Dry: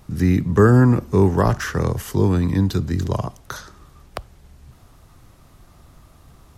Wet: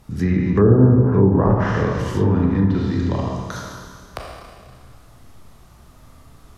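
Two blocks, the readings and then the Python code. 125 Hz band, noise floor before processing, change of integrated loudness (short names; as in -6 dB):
+1.0 dB, -50 dBFS, +1.0 dB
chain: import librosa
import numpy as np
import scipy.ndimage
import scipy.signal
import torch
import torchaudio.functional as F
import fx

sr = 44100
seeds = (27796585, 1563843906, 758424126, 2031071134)

y = fx.doubler(x, sr, ms=16.0, db=-13)
y = fx.rev_schroeder(y, sr, rt60_s=1.9, comb_ms=27, drr_db=-1.5)
y = fx.env_lowpass_down(y, sr, base_hz=630.0, full_db=-7.0)
y = y * librosa.db_to_amplitude(-2.0)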